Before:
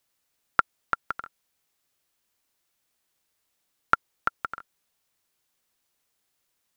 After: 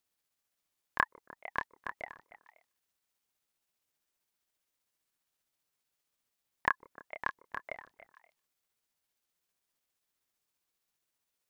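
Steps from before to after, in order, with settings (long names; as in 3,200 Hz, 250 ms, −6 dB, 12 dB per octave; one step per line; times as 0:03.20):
time stretch by overlap-add 1.7×, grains 132 ms
echo through a band-pass that steps 151 ms, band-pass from 260 Hz, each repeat 1.4 octaves, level −8.5 dB
ring modulator whose carrier an LFO sweeps 520 Hz, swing 45%, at 3.5 Hz
level −4 dB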